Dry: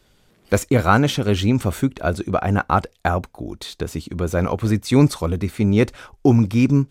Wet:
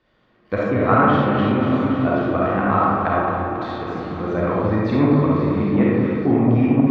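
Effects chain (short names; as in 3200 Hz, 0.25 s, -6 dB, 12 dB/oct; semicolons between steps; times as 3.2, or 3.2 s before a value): regenerating reverse delay 0.138 s, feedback 84%, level -11 dB; air absorption 290 m; small resonant body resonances 380/1100/1800 Hz, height 8 dB, ringing for 25 ms; treble ducked by the level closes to 2400 Hz, closed at -9.5 dBFS; HPF 150 Hz 6 dB/oct; bell 400 Hz -14.5 dB 0.2 oct; reverb RT60 1.7 s, pre-delay 10 ms, DRR -5.5 dB; core saturation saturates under 340 Hz; gain -4.5 dB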